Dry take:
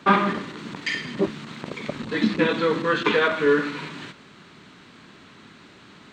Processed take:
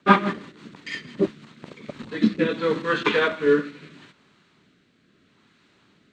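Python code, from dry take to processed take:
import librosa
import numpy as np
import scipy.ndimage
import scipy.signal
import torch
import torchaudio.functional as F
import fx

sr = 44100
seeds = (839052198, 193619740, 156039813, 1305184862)

y = fx.rotary_switch(x, sr, hz=6.0, then_hz=0.75, switch_at_s=1.31)
y = fx.upward_expand(y, sr, threshold_db=-44.0, expansion=1.5)
y = y * librosa.db_to_amplitude(4.5)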